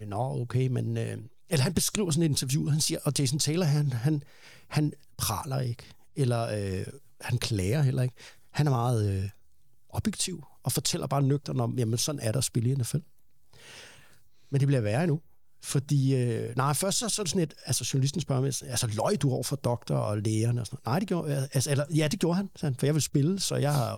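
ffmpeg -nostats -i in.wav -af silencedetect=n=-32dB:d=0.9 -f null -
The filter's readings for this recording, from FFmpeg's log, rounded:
silence_start: 12.99
silence_end: 14.53 | silence_duration: 1.54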